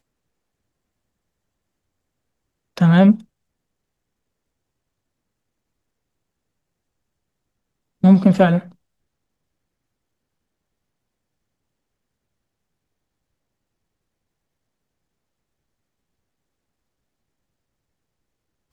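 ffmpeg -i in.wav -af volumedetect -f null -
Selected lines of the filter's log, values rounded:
mean_volume: -24.9 dB
max_volume: -1.8 dB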